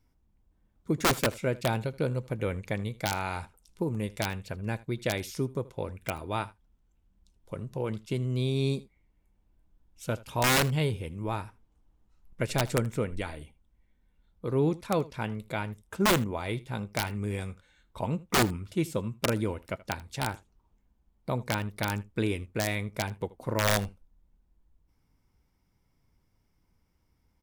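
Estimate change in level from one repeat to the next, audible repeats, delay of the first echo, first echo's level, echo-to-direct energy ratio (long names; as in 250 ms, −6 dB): repeats not evenly spaced, 1, 79 ms, −20.5 dB, −20.5 dB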